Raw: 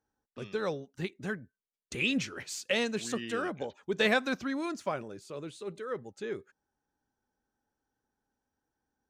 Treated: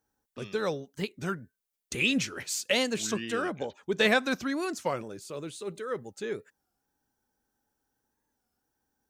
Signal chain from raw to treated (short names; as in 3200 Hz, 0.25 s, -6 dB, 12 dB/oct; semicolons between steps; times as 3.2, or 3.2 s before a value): high shelf 7300 Hz +10 dB, from 3.08 s +5 dB, from 4.31 s +11.5 dB; record warp 33 1/3 rpm, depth 160 cents; gain +2.5 dB